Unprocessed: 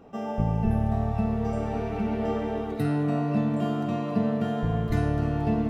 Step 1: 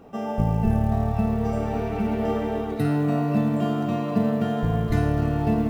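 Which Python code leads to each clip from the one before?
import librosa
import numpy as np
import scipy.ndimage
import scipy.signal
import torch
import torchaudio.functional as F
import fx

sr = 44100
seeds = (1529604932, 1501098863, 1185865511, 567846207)

y = fx.quant_companded(x, sr, bits=8)
y = y * 10.0 ** (3.0 / 20.0)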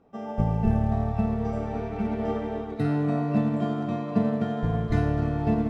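y = fx.air_absorb(x, sr, metres=71.0)
y = fx.notch(y, sr, hz=2800.0, q=18.0)
y = fx.upward_expand(y, sr, threshold_db=-43.0, expansion=1.5)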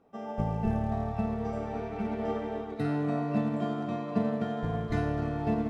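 y = fx.low_shelf(x, sr, hz=190.0, db=-7.0)
y = y * 10.0 ** (-2.0 / 20.0)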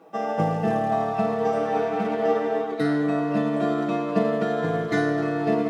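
y = scipy.signal.sosfilt(scipy.signal.butter(2, 270.0, 'highpass', fs=sr, output='sos'), x)
y = y + 0.91 * np.pad(y, (int(6.2 * sr / 1000.0), 0))[:len(y)]
y = fx.rider(y, sr, range_db=4, speed_s=0.5)
y = y * 10.0 ** (8.5 / 20.0)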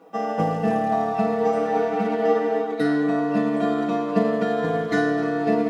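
y = x + 0.5 * np.pad(x, (int(4.1 * sr / 1000.0), 0))[:len(x)]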